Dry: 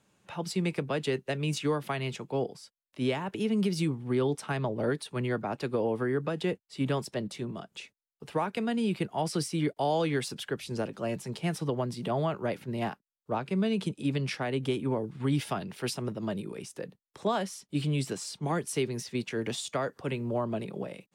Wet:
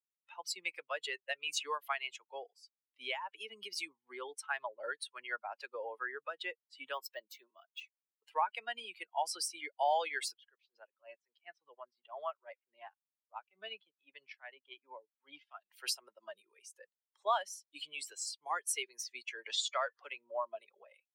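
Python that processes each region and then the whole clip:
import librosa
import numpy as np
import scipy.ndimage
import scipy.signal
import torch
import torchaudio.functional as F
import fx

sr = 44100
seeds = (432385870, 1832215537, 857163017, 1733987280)

y = fx.chain(x, sr, fx.highpass(hz=190.0, slope=12),
    fx.resample_linear(factor=2), at=(6.93, 7.81))
y = fx.chain(y, sr, fx.lowpass(hz=4600.0, slope=12),
    fx.transient(attack_db=-10, sustain_db=-5),
    fx.upward_expand(threshold_db=-39.0, expansion=1.5), at=(10.34, 15.71))
y = fx.chain(y, sr, fx.law_mismatch(coded='mu'),
    fx.lowpass(hz=5500.0, slope=12),
    fx.high_shelf(hz=4200.0, db=3.5), at=(19.47, 20.07))
y = fx.bin_expand(y, sr, power=2.0)
y = scipy.signal.sosfilt(scipy.signal.butter(4, 720.0, 'highpass', fs=sr, output='sos'), y)
y = F.gain(torch.from_numpy(y), 4.5).numpy()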